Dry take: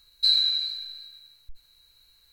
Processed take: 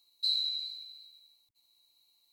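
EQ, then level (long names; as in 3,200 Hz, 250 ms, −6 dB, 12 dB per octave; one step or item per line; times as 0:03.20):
Chebyshev high-pass filter 270 Hz, order 2
phaser with its sweep stopped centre 310 Hz, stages 8
−6.5 dB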